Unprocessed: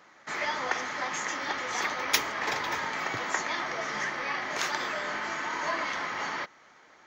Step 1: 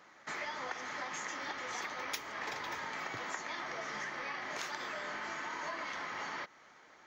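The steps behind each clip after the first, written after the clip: compression 4:1, threshold -35 dBFS, peak gain reduction 14 dB; trim -3 dB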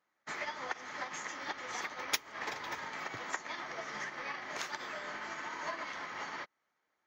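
upward expansion 2.5:1, over -55 dBFS; trim +7.5 dB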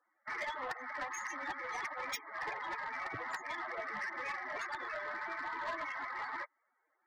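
loudest bins only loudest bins 32; saturation -38.5 dBFS, distortion -11 dB; trim +5 dB

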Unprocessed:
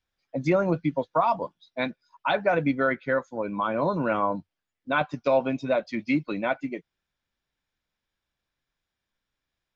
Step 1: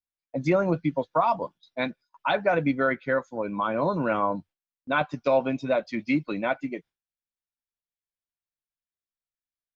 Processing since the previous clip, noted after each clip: gate with hold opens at -47 dBFS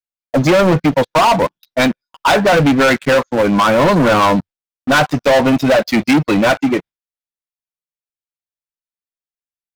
waveshaping leveller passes 5; trim +3 dB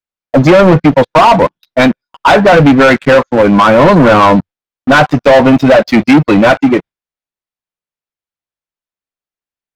low-pass 2.6 kHz 6 dB/octave; trim +6.5 dB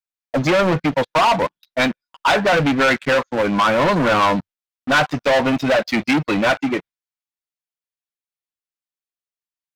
tilt shelf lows -4.5 dB, about 1.2 kHz; trim -8.5 dB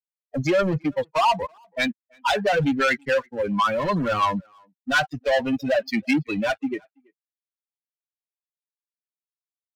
expander on every frequency bin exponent 2; speakerphone echo 330 ms, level -29 dB; trim -1 dB

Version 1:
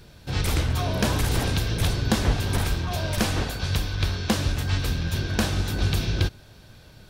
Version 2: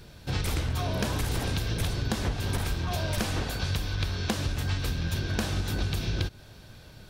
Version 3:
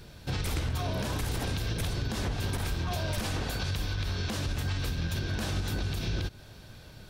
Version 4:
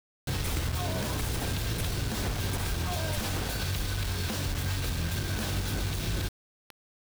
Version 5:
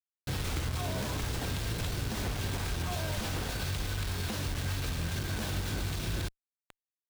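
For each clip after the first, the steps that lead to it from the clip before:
compression, threshold -25 dBFS, peak gain reduction 9.5 dB
peak limiter -22.5 dBFS, peak gain reduction 9.5 dB
word length cut 6-bit, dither none
sliding maximum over 3 samples; trim -2.5 dB

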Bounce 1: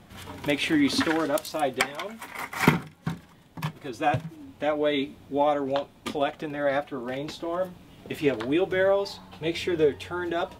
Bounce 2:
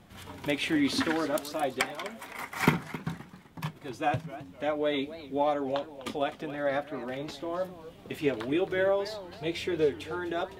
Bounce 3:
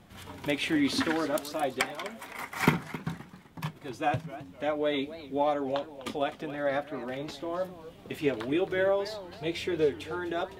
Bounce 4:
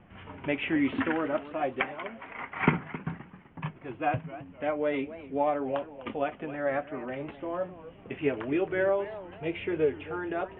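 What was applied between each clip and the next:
modulated delay 259 ms, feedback 34%, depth 219 cents, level -15 dB; trim -4 dB
no audible change
steep low-pass 3 kHz 72 dB/octave

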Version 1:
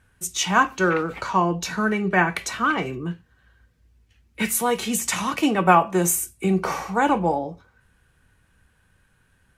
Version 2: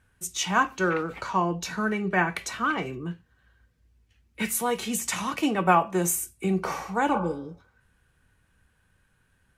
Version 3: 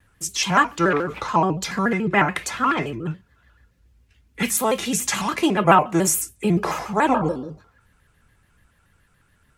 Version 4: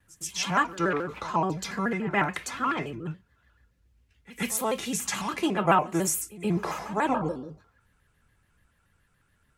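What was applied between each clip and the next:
spectral replace 7.16–7.53 s, 520–1600 Hz both; trim -4.5 dB
vibrato with a chosen wave square 7 Hz, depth 160 cents; trim +5.5 dB
pre-echo 126 ms -18 dB; trim -7 dB

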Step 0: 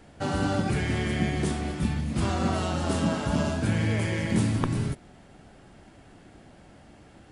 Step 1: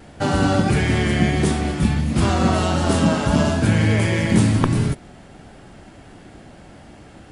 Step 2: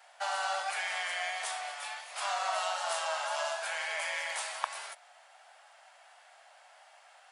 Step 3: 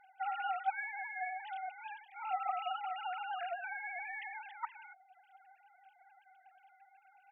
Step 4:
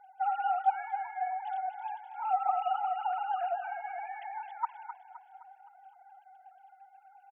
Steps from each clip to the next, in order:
vibrato 1.5 Hz 27 cents; trim +8.5 dB
steep high-pass 650 Hz 48 dB/octave; trim -8 dB
formants replaced by sine waves; reverb removal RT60 0.58 s; trim -4 dB
graphic EQ 500/1000/2000 Hz +7/+10/-11 dB; feedback delay 259 ms, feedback 47%, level -11 dB

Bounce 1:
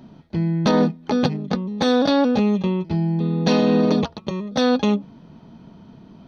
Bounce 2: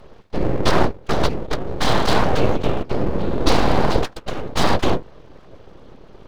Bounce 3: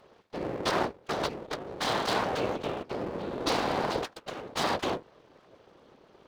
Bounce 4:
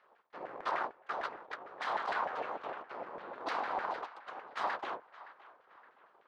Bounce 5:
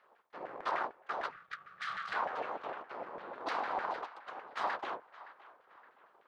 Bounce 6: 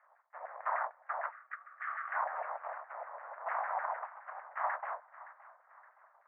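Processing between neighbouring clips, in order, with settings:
whisper effect; full-wave rectifier; trim +3.5 dB
high-pass 360 Hz 6 dB/octave; trim -8 dB
LFO band-pass saw down 6.6 Hz 760–1800 Hz; band-passed feedback delay 568 ms, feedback 46%, band-pass 1.6 kHz, level -16 dB
time-frequency box 1.31–2.13 s, 210–1100 Hz -20 dB
elliptic band-pass 620–2000 Hz, stop band 40 dB; trim +1 dB

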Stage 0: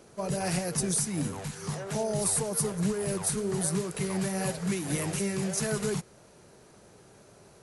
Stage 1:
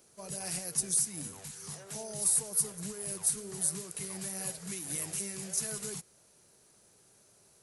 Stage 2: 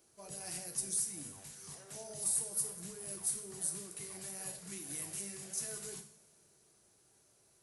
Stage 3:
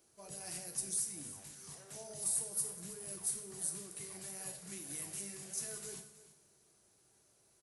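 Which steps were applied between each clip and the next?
pre-emphasis filter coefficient 0.8
two-slope reverb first 0.59 s, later 3.2 s, from -22 dB, DRR 4.5 dB; trim -7 dB
delay 322 ms -16 dB; trim -1.5 dB

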